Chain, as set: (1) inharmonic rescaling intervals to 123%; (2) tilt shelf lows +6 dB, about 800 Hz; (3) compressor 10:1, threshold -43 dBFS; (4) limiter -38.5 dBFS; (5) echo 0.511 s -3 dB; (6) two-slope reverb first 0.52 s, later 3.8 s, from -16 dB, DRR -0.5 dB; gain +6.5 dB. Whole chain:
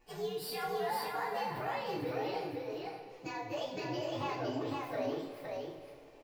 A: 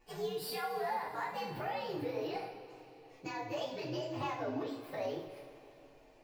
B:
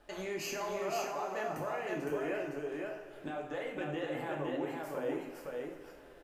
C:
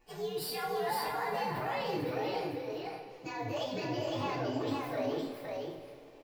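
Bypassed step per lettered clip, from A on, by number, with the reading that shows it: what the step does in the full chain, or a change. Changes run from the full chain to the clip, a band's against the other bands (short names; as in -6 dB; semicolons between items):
5, momentary loudness spread change +8 LU; 1, 8 kHz band +5.5 dB; 3, mean gain reduction 11.5 dB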